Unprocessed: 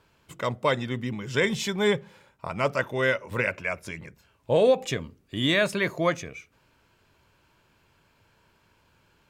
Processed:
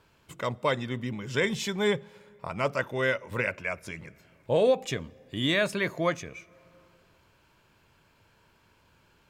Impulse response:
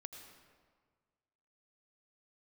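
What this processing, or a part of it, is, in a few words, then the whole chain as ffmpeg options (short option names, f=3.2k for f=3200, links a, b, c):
ducked reverb: -filter_complex "[0:a]asplit=3[a][b][c];[1:a]atrim=start_sample=2205[d];[b][d]afir=irnorm=-1:irlink=0[e];[c]apad=whole_len=410058[f];[e][f]sidechaincompress=threshold=-44dB:ratio=4:attack=5.3:release=445,volume=-1dB[g];[a][g]amix=inputs=2:normalize=0,volume=-3dB"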